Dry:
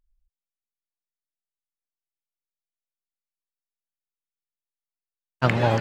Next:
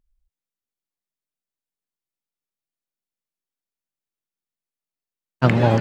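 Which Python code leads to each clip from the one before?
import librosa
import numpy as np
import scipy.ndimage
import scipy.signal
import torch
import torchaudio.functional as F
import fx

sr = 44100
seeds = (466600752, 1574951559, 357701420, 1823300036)

y = fx.peak_eq(x, sr, hz=210.0, db=7.5, octaves=2.5)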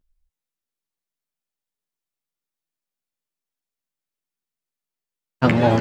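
y = fx.doubler(x, sr, ms=12.0, db=-5)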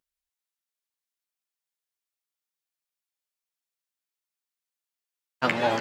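y = fx.highpass(x, sr, hz=1100.0, slope=6)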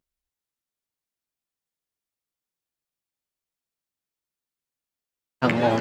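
y = fx.low_shelf(x, sr, hz=490.0, db=12.0)
y = y * 10.0 ** (-1.5 / 20.0)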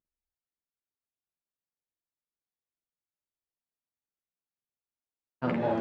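y = fx.lowpass(x, sr, hz=1100.0, slope=6)
y = fx.doubler(y, sr, ms=48.0, db=-2.0)
y = y * 10.0 ** (-8.5 / 20.0)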